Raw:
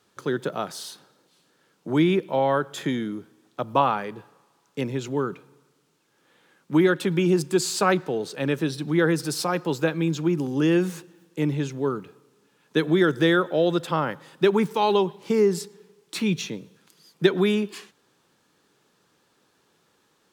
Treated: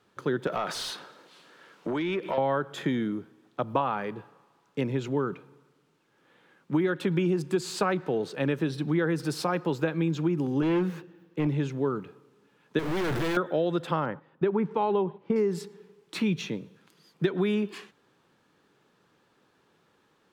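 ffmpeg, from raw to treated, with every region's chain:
ffmpeg -i in.wav -filter_complex "[0:a]asettb=1/sr,asplit=3[link_01][link_02][link_03];[link_01]atrim=end=0.474[link_04];[link_02]atrim=start=0.47:end=2.38,asetpts=PTS-STARTPTS,afade=type=in:duration=0.004:curve=qsin,afade=type=out:start_time=1.906:duration=0.004:curve=qsin,bandreject=frequency=800:width=19,acompressor=threshold=-31dB:ratio=10:attack=3.2:release=140:knee=1:detection=peak,asplit=2[link_05][link_06];[link_06]highpass=frequency=720:poles=1,volume=19dB,asoftclip=type=tanh:threshold=-17.5dB[link_07];[link_05][link_07]amix=inputs=2:normalize=0,lowpass=frequency=6700:poles=1,volume=-6dB[link_08];[link_03]atrim=start=2.376[link_09];[link_04][link_08]acrossfade=duration=0.004:curve1=hsin:curve2=qsin[link_10];[link_10][link_09]acrossfade=duration=0.004:curve1=qsin:curve2=hsin,asettb=1/sr,asplit=3[link_11][link_12][link_13];[link_11]atrim=end=10.624[link_14];[link_12]atrim=start=10.62:end=11.47,asetpts=PTS-STARTPTS,afade=type=in:duration=0.004:curve=qsin,afade=type=out:start_time=0.846:duration=0.004:curve=qsin,equalizer=frequency=8600:width_type=o:width=1.4:gain=-10.5,volume=19.5dB,asoftclip=hard,volume=-19.5dB[link_15];[link_13]atrim=start=11.466[link_16];[link_14][link_15]acrossfade=duration=0.004:curve1=hsin:curve2=qsin[link_17];[link_17][link_16]acrossfade=duration=0.004:curve1=qsin:curve2=hsin,asettb=1/sr,asplit=3[link_18][link_19][link_20];[link_18]atrim=end=12.794[link_21];[link_19]atrim=start=12.79:end=13.37,asetpts=PTS-STARTPTS,afade=type=in:duration=0.004:curve=qsin,afade=type=out:start_time=0.576:duration=0.004:curve=qsin,aeval=exprs='val(0)+0.5*0.075*sgn(val(0))':channel_layout=same,aeval=exprs='(tanh(22.4*val(0)+0.35)-tanh(0.35))/22.4':channel_layout=same[link_22];[link_20]atrim=start=13.366[link_23];[link_21][link_22]acrossfade=duration=0.004:curve1=hsin:curve2=qsin[link_24];[link_24][link_23]acrossfade=duration=0.004:curve1=qsin:curve2=hsin,asettb=1/sr,asplit=3[link_25][link_26][link_27];[link_25]atrim=end=14.054[link_28];[link_26]atrim=start=14.05:end=15.36,asetpts=PTS-STARTPTS,afade=type=in:duration=0.004:curve=qsin,afade=type=out:start_time=1.306:duration=0.004:curve=qsin,lowpass=frequency=2300:poles=1,aemphasis=mode=reproduction:type=75kf,agate=range=-9dB:threshold=-47dB:ratio=16:release=100:detection=peak[link_29];[link_27]atrim=start=15.356[link_30];[link_28][link_29]acrossfade=duration=0.004:curve1=hsin:curve2=qsin[link_31];[link_31][link_30]acrossfade=duration=0.004:curve1=qsin:curve2=hsin,bass=frequency=250:gain=1,treble=frequency=4000:gain=-10,acompressor=threshold=-22dB:ratio=6" out.wav

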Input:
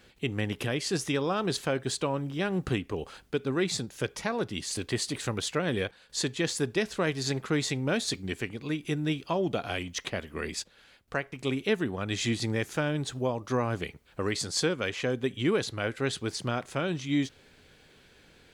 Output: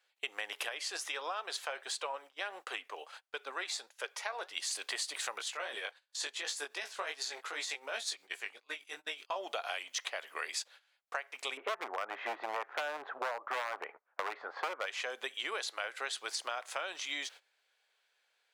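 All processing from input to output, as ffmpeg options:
ffmpeg -i in.wav -filter_complex "[0:a]asettb=1/sr,asplit=3[link_01][link_02][link_03];[link_01]atrim=end=0.694[link_04];[link_02]atrim=start=0.69:end=4.57,asetpts=PTS-STARTPTS,afade=type=in:duration=0.004:curve=qsin,afade=type=out:start_time=3.876:duration=0.004:curve=qsin,bass=frequency=250:gain=-7,treble=frequency=4000:gain=-3,flanger=delay=1.8:depth=5.1:regen=74:speed=1.5:shape=triangular[link_05];[link_03]atrim=start=4.566[link_06];[link_04][link_05]acrossfade=duration=0.004:curve1=hsin:curve2=qsin[link_07];[link_07][link_06]acrossfade=duration=0.004:curve1=qsin:curve2=hsin,asettb=1/sr,asplit=3[link_08][link_09][link_10];[link_08]atrim=end=5.384[link_11];[link_09]atrim=start=5.38:end=9.36,asetpts=PTS-STARTPTS,afade=type=in:duration=0.004:curve=qsin,afade=type=out:start_time=3.976:duration=0.004:curve=qsin,tremolo=f=8.1:d=0.65,flanger=delay=17:depth=4.1:speed=2.7[link_12];[link_10]atrim=start=9.356[link_13];[link_11][link_12]acrossfade=duration=0.004:curve1=hsin:curve2=qsin[link_14];[link_14][link_13]acrossfade=duration=0.004:curve1=qsin:curve2=hsin,asettb=1/sr,asplit=3[link_15][link_16][link_17];[link_15]atrim=end=11.574[link_18];[link_16]atrim=start=11.57:end=14.86,asetpts=PTS-STARTPTS,afade=type=in:duration=0.004:curve=qsin,afade=type=out:start_time=3.286:duration=0.004:curve=qsin,lowpass=frequency=1500:width=0.5412,lowpass=frequency=1500:width=1.3066,acontrast=80,aeval=exprs='0.119*(abs(mod(val(0)/0.119+3,4)-2)-1)':channel_layout=same[link_19];[link_17]atrim=start=14.856[link_20];[link_18][link_19]acrossfade=duration=0.004:curve1=hsin:curve2=qsin[link_21];[link_21][link_20]acrossfade=duration=0.004:curve1=qsin:curve2=hsin,highpass=frequency=650:width=0.5412,highpass=frequency=650:width=1.3066,agate=range=-20dB:threshold=-52dB:ratio=16:detection=peak,acompressor=threshold=-38dB:ratio=6,volume=4dB" out.wav

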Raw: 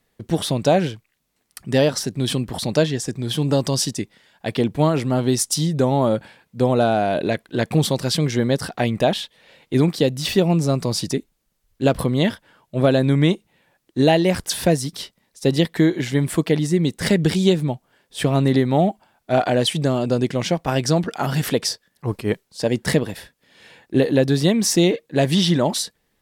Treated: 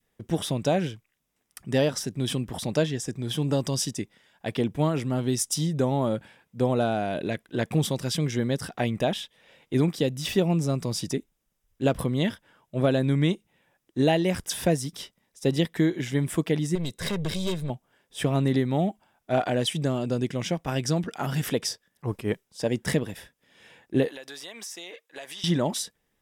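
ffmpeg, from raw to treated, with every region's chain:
ffmpeg -i in.wav -filter_complex "[0:a]asettb=1/sr,asplit=3[link_01][link_02][link_03];[link_01]atrim=end=16.754[link_04];[link_02]atrim=start=16.75:end=17.7,asetpts=PTS-STARTPTS,afade=type=in:duration=0.004:curve=qsin,afade=type=out:start_time=0.946:duration=0.004:curve=qsin,equalizer=frequency=4000:width_type=o:width=0.2:gain=12.5,aeval=exprs='(tanh(7.94*val(0)+0.4)-tanh(0.4))/7.94':channel_layout=same,aecho=1:1:1.9:0.4,atrim=end_sample=41895[link_05];[link_03]atrim=start=17.696[link_06];[link_04][link_05]acrossfade=duration=0.004:curve1=hsin:curve2=qsin[link_07];[link_07][link_06]acrossfade=duration=0.004:curve1=qsin:curve2=hsin,asettb=1/sr,asplit=3[link_08][link_09][link_10];[link_08]atrim=end=24.084[link_11];[link_09]atrim=start=24.08:end=25.44,asetpts=PTS-STARTPTS,afade=type=in:duration=0.004:curve=qsin,afade=type=out:start_time=1.356:duration=0.004:curve=qsin,highpass=920,acompressor=threshold=-30dB:ratio=6:attack=3.2:release=140:knee=1:detection=peak[link_12];[link_10]atrim=start=25.436[link_13];[link_11][link_12]acrossfade=duration=0.004:curve1=hsin:curve2=qsin[link_14];[link_14][link_13]acrossfade=duration=0.004:curve1=qsin:curve2=hsin,bandreject=frequency=4300:width=5.8,adynamicequalizer=threshold=0.0316:dfrequency=740:dqfactor=0.71:tfrequency=740:tqfactor=0.71:attack=5:release=100:ratio=0.375:range=3:mode=cutabove:tftype=bell,volume=-5.5dB" out.wav

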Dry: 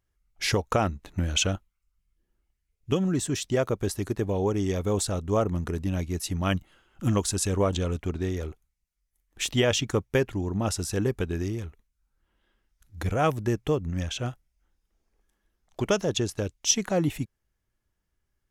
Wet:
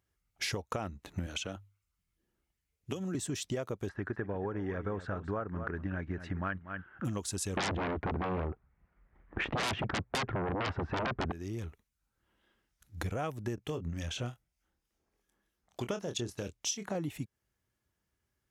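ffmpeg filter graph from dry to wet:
ffmpeg -i in.wav -filter_complex "[0:a]asettb=1/sr,asplit=3[link_01][link_02][link_03];[link_01]atrim=end=1.264[link_04];[link_02]atrim=start=1.26:end=3.15,asetpts=PTS-STARTPTS,afade=type=in:duration=0.004:curve=qsin,afade=type=out:start_time=1.886:duration=0.004:curve=qsin,acrossover=split=210|5000[link_05][link_06][link_07];[link_05]acompressor=threshold=-41dB:ratio=4[link_08];[link_06]acompressor=threshold=-32dB:ratio=4[link_09];[link_07]acompressor=threshold=-41dB:ratio=4[link_10];[link_08][link_09][link_10]amix=inputs=3:normalize=0,bandreject=frequency=50:width_type=h:width=6,bandreject=frequency=100:width_type=h:width=6[link_11];[link_03]atrim=start=3.146[link_12];[link_04][link_11]acrossfade=duration=0.004:curve1=hsin:curve2=qsin[link_13];[link_13][link_12]acrossfade=duration=0.004:curve1=qsin:curve2=hsin,asettb=1/sr,asplit=3[link_14][link_15][link_16];[link_14]atrim=end=3.894[link_17];[link_15]atrim=start=3.89:end=7.05,asetpts=PTS-STARTPTS,afade=type=in:duration=0.004:curve=qsin,afade=type=out:start_time=3.156:duration=0.004:curve=qsin,lowpass=frequency=1600:width_type=q:width=5.4,aecho=1:1:240:0.2,atrim=end_sample=139356[link_18];[link_16]atrim=start=7.046[link_19];[link_17][link_18]acrossfade=duration=0.004:curve1=hsin:curve2=qsin[link_20];[link_20][link_19]acrossfade=duration=0.004:curve1=qsin:curve2=hsin,asettb=1/sr,asplit=3[link_21][link_22][link_23];[link_21]atrim=end=7.574[link_24];[link_22]atrim=start=7.57:end=11.32,asetpts=PTS-STARTPTS,afade=type=in:duration=0.004:curve=qsin,afade=type=out:start_time=3.746:duration=0.004:curve=qsin,lowpass=frequency=1700:width=0.5412,lowpass=frequency=1700:width=1.3066,aeval=exprs='0.251*sin(PI/2*8.91*val(0)/0.251)':channel_layout=same[link_25];[link_23]atrim=start=11.316[link_26];[link_24][link_25]acrossfade=duration=0.004:curve1=hsin:curve2=qsin[link_27];[link_27][link_26]acrossfade=duration=0.004:curve1=qsin:curve2=hsin,asettb=1/sr,asplit=3[link_28][link_29][link_30];[link_28]atrim=end=13.554[link_31];[link_29]atrim=start=13.55:end=16.95,asetpts=PTS-STARTPTS,afade=type=in:duration=0.004:curve=qsin,afade=type=out:start_time=3.396:duration=0.004:curve=qsin,acrossover=split=2000[link_32][link_33];[link_32]aeval=exprs='val(0)*(1-0.5/2+0.5/2*cos(2*PI*3.3*n/s))':channel_layout=same[link_34];[link_33]aeval=exprs='val(0)*(1-0.5/2-0.5/2*cos(2*PI*3.3*n/s))':channel_layout=same[link_35];[link_34][link_35]amix=inputs=2:normalize=0,asplit=2[link_36][link_37];[link_37]adelay=25,volume=-9dB[link_38];[link_36][link_38]amix=inputs=2:normalize=0,atrim=end_sample=149940[link_39];[link_30]atrim=start=16.946[link_40];[link_31][link_39]acrossfade=duration=0.004:curve1=hsin:curve2=qsin[link_41];[link_41][link_40]acrossfade=duration=0.004:curve1=qsin:curve2=hsin,highpass=73,acompressor=threshold=-33dB:ratio=6" out.wav

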